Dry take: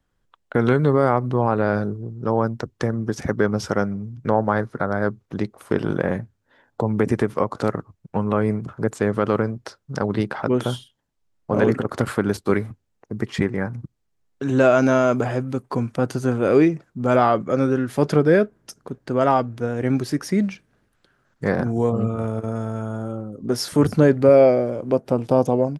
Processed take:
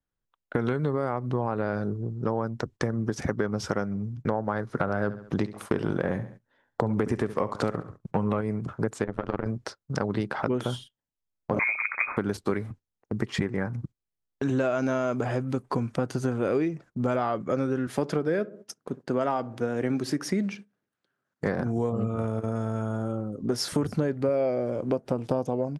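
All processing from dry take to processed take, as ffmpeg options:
-filter_complex "[0:a]asettb=1/sr,asplit=3[a][b][c];[a]atrim=end=4.674[d];[b]atrim=start=4.67:end=8.41,asetpts=PTS-STARTPTS,afade=t=in:d=0.004:c=qsin,afade=t=out:st=3.736:d=0.004:c=qsin,acontrast=27,aecho=1:1:68|136|204:0.158|0.0586|0.0217,atrim=end_sample=164934[e];[c]atrim=start=8.406[f];[d][e]acrossfade=d=0.004:c1=hsin:c2=qsin[g];[g][f]acrossfade=d=0.004:c1=qsin:c2=hsin,asettb=1/sr,asplit=3[h][i][j];[h]atrim=end=9.044[k];[i]atrim=start=9.04:end=9.46,asetpts=PTS-STARTPTS,afade=t=in:d=0.004:c=qsin,afade=t=out:st=0.416:d=0.004:c=qsin,lowpass=f=3.8k:p=1,tremolo=f=88:d=0.974,aeval=exprs='(tanh(3.16*val(0)+0.75)-tanh(0.75))/3.16':c=same[l];[j]atrim=start=9.456[m];[k][l]acrossfade=d=0.004:c1=hsin:c2=qsin[n];[n][m]acrossfade=d=0.004:c1=qsin:c2=hsin,asettb=1/sr,asplit=3[o][p][q];[o]atrim=end=11.594[r];[p]atrim=start=11.59:end=12.17,asetpts=PTS-STARTPTS,afade=t=in:d=0.004:c=qsin,afade=t=out:st=0.576:d=0.004:c=qsin,bandreject=f=51.86:t=h:w=4,bandreject=f=103.72:t=h:w=4,bandreject=f=155.58:t=h:w=4,bandreject=f=207.44:t=h:w=4,bandreject=f=259.3:t=h:w=4,bandreject=f=311.16:t=h:w=4,bandreject=f=363.02:t=h:w=4,bandreject=f=414.88:t=h:w=4,lowpass=f=2.2k:t=q:w=0.5098,lowpass=f=2.2k:t=q:w=0.6013,lowpass=f=2.2k:t=q:w=0.9,lowpass=f=2.2k:t=q:w=2.563,afreqshift=-2600[s];[q]atrim=start=12.166[t];[r][s]acrossfade=d=0.004:c1=hsin:c2=qsin[u];[u][t]acrossfade=d=0.004:c1=qsin:c2=hsin,asettb=1/sr,asplit=3[v][w][x];[v]atrim=end=17.874[y];[w]atrim=start=17.87:end=21.47,asetpts=PTS-STARTPTS,afade=t=in:d=0.004:c=qsin,afade=t=out:st=3.596:d=0.004:c=qsin,highpass=150,asplit=2[z][aa];[aa]adelay=64,lowpass=f=840:p=1,volume=-18.5dB,asplit=2[ab][ac];[ac]adelay=64,lowpass=f=840:p=1,volume=0.53,asplit=2[ad][ae];[ae]adelay=64,lowpass=f=840:p=1,volume=0.53,asplit=2[af][ag];[ag]adelay=64,lowpass=f=840:p=1,volume=0.53[ah];[z][ab][ad][af][ah]amix=inputs=5:normalize=0,atrim=end_sample=158760[ai];[x]atrim=start=21.466[aj];[y][ai]acrossfade=d=0.004:c1=hsin:c2=qsin[ak];[ak][aj]acrossfade=d=0.004:c1=qsin:c2=hsin,lowpass=11k,agate=range=-16dB:threshold=-39dB:ratio=16:detection=peak,acompressor=threshold=-23dB:ratio=6"

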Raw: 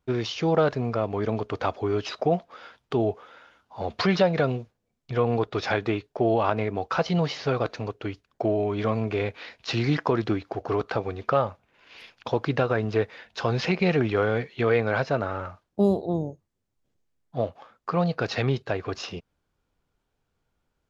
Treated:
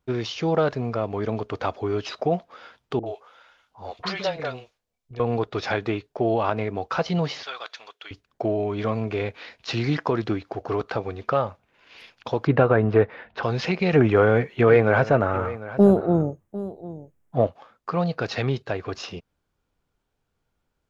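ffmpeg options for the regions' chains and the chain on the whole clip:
-filter_complex "[0:a]asettb=1/sr,asplit=3[a][b][c];[a]atrim=end=2.994[d];[b]atrim=start=2.99:end=5.2,asetpts=PTS-STARTPTS,afade=t=in:d=0.004:c=qsin,afade=t=out:st=2.206:d=0.004:c=qsin,equalizer=f=170:w=0.46:g=-11.5,acrossover=split=360|1700[e][f][g];[f]adelay=40[h];[g]adelay=70[i];[e][h][i]amix=inputs=3:normalize=0,atrim=end_sample=97461[j];[c]atrim=start=5.196[k];[d][j]acrossfade=d=0.004:c1=hsin:c2=qsin[l];[l][k]acrossfade=d=0.004:c1=qsin:c2=hsin,asettb=1/sr,asplit=3[m][n][o];[m]atrim=end=7.434[p];[n]atrim=start=7.43:end=8.11,asetpts=PTS-STARTPTS,afade=t=in:d=0.004:c=qsin,afade=t=out:st=0.676:d=0.004:c=qsin,highpass=1.3k,equalizer=f=3.4k:w=7.4:g=11[q];[o]atrim=start=8.106[r];[p][q]acrossfade=d=0.004:c1=hsin:c2=qsin[s];[s][r]acrossfade=d=0.004:c1=qsin:c2=hsin,asettb=1/sr,asplit=3[t][u][v];[t]atrim=end=12.474[w];[u]atrim=start=12.47:end=13.43,asetpts=PTS-STARTPTS,afade=t=in:d=0.004:c=qsin,afade=t=out:st=0.956:d=0.004:c=qsin,lowpass=1.8k,acontrast=67[x];[v]atrim=start=13.426[y];[w][x]acrossfade=d=0.004:c1=hsin:c2=qsin[z];[z][y]acrossfade=d=0.004:c1=qsin:c2=hsin,asettb=1/sr,asplit=3[aa][ab][ac];[aa]atrim=end=13.934[ad];[ab]atrim=start=13.93:end=17.47,asetpts=PTS-STARTPTS,afade=t=in:d=0.004:c=qsin,afade=t=out:st=3.536:d=0.004:c=qsin,equalizer=f=4.4k:w=1.3:g=-13,acontrast=74,aecho=1:1:750:0.158,atrim=end_sample=156114[ae];[ac]atrim=start=17.466[af];[ad][ae]acrossfade=d=0.004:c1=hsin:c2=qsin[ag];[ag][af]acrossfade=d=0.004:c1=qsin:c2=hsin"

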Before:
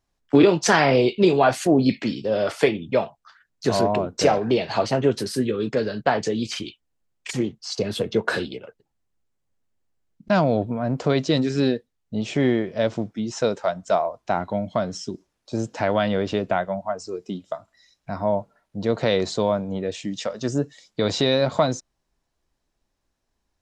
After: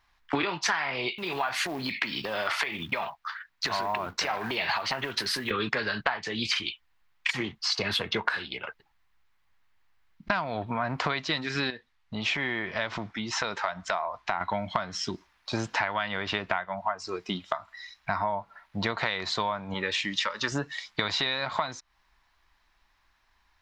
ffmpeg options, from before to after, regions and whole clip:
-filter_complex "[0:a]asettb=1/sr,asplit=3[a][b][c];[a]atrim=end=1.164[d];[b]atrim=start=1.16:end=5.51,asetpts=PTS-STARTPTS,afade=t=in:d=0.004:c=qsin,afade=t=out:st=4.346:d=0.004:c=qsin,lowshelf=f=88:g=-6.5,acrusher=bits=7:mode=log:mix=0:aa=0.000001,acompressor=threshold=-29dB:ratio=6:attack=3.2:release=140:knee=1:detection=peak[e];[c]atrim=start=5.506[f];[d][e]acrossfade=d=0.004:c1=hsin:c2=qsin[g];[g][f]acrossfade=d=0.004:c1=qsin:c2=hsin,asettb=1/sr,asplit=3[h][i][j];[h]atrim=end=11.704[k];[i]atrim=start=11.7:end=14.41,asetpts=PTS-STARTPTS,afade=t=in:d=0.004:c=qsin,afade=t=out:st=2.706:d=0.004:c=qsin,lowpass=9.3k,acompressor=threshold=-33dB:ratio=2:attack=3.2:release=140:knee=1:detection=peak[l];[j]atrim=start=14.406[m];[k][l]acrossfade=d=0.004:c1=hsin:c2=qsin[n];[n][m]acrossfade=d=0.004:c1=qsin:c2=hsin,asettb=1/sr,asplit=3[o][p][q];[o]atrim=end=19.744[r];[p]atrim=start=19.74:end=20.52,asetpts=PTS-STARTPTS,afade=t=in:d=0.004:c=qsin,afade=t=out:st=0.776:d=0.004:c=qsin,asuperstop=centerf=710:order=8:qfactor=3.4,lowshelf=f=220:g=-8[s];[q]atrim=start=20.516[t];[r][s]acrossfade=d=0.004:c1=hsin:c2=qsin[u];[u][t]acrossfade=d=0.004:c1=qsin:c2=hsin,equalizer=f=125:t=o:w=1:g=-7,equalizer=f=250:t=o:w=1:g=-7,equalizer=f=500:t=o:w=1:g=-11,equalizer=f=1k:t=o:w=1:g=9,equalizer=f=2k:t=o:w=1:g=9,equalizer=f=4k:t=o:w=1:g=5,equalizer=f=8k:t=o:w=1:g=-9,acompressor=threshold=-31dB:ratio=16,volume=6.5dB"

